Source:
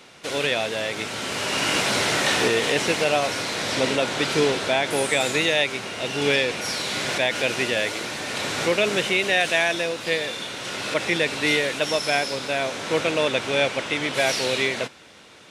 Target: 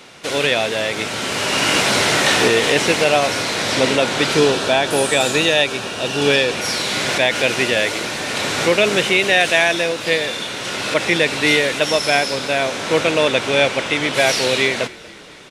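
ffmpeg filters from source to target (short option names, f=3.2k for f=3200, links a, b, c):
-filter_complex "[0:a]asettb=1/sr,asplit=3[a][b][c];[a]atrim=end=4.374[d];[b]atrim=start=4.37:end=6.55,asetpts=PTS-STARTPTS,afade=t=in:d=0.004:c=qsin,afade=t=out:st=2.176:d=0.004:c=qsin,bandreject=f=2.1k:w=5.7[e];[c]atrim=start=6.546[f];[d][e]acrossfade=d=0.004:c1=hsin:c2=qsin[g];[g][f]acrossfade=d=0.004:c1=qsin:c2=hsin,asplit=5[h][i][j][k][l];[i]adelay=235,afreqshift=-33,volume=-22dB[m];[j]adelay=470,afreqshift=-66,volume=-26.6dB[n];[k]adelay=705,afreqshift=-99,volume=-31.2dB[o];[l]adelay=940,afreqshift=-132,volume=-35.7dB[p];[h][m][n][o][p]amix=inputs=5:normalize=0,volume=6dB"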